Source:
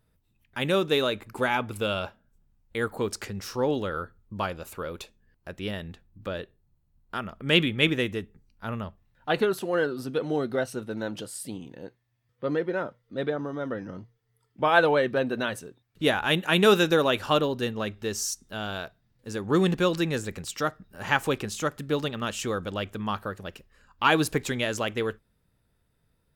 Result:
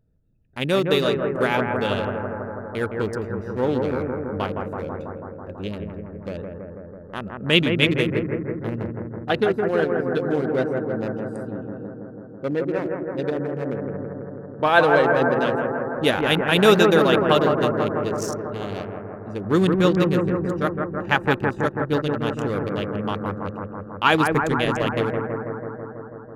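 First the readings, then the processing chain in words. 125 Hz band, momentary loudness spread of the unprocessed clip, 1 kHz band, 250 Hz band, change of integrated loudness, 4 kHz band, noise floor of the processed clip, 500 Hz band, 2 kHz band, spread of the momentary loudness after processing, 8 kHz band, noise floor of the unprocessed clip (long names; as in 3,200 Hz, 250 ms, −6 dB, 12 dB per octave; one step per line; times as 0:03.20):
+7.0 dB, 17 LU, +5.5 dB, +6.5 dB, +5.0 dB, +2.5 dB, −39 dBFS, +6.0 dB, +4.0 dB, 16 LU, −4.5 dB, −72 dBFS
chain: adaptive Wiener filter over 41 samples
on a send: bucket-brigade delay 164 ms, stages 2,048, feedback 78%, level −4 dB
on the sum: level +4 dB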